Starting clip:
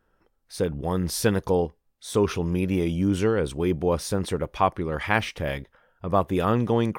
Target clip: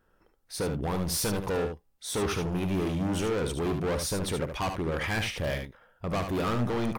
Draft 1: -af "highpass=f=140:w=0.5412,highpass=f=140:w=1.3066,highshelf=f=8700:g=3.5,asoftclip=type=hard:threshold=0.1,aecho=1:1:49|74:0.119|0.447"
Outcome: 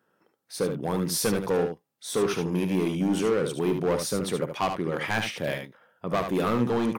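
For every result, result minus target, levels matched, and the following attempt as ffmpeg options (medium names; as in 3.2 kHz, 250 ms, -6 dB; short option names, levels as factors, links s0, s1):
125 Hz band -4.0 dB; hard clipper: distortion -4 dB
-af "highshelf=f=8700:g=3.5,asoftclip=type=hard:threshold=0.1,aecho=1:1:49|74:0.119|0.447"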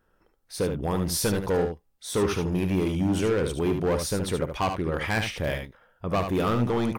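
hard clipper: distortion -5 dB
-af "highshelf=f=8700:g=3.5,asoftclip=type=hard:threshold=0.0473,aecho=1:1:49|74:0.119|0.447"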